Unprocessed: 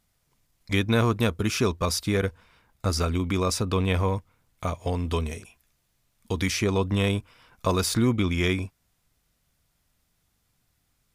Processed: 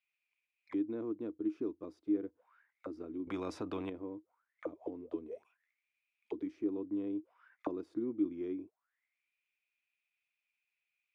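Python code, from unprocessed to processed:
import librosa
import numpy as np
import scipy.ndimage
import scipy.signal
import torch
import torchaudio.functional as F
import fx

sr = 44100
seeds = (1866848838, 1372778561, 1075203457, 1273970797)

y = fx.bass_treble(x, sr, bass_db=-9, treble_db=-2)
y = fx.auto_wah(y, sr, base_hz=310.0, top_hz=2500.0, q=14.0, full_db=-27.5, direction='down')
y = fx.spectral_comp(y, sr, ratio=2.0, at=(3.27, 3.9))
y = y * librosa.db_to_amplitude(4.5)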